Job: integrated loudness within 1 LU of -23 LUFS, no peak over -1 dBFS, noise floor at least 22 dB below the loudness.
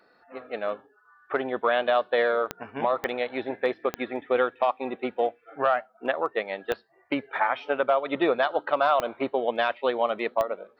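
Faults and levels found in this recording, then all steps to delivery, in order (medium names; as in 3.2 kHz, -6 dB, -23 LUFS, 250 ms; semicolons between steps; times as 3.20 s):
clicks found 6; loudness -27.0 LUFS; peak level -8.5 dBFS; loudness target -23.0 LUFS
-> de-click; trim +4 dB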